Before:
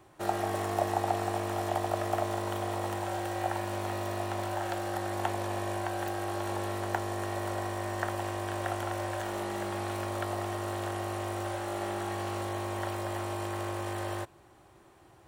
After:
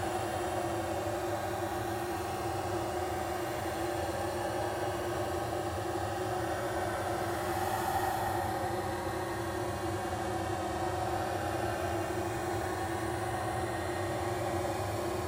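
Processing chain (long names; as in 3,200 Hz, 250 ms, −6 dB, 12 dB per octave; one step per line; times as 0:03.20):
extreme stretch with random phases 40×, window 0.05 s, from 0:04.77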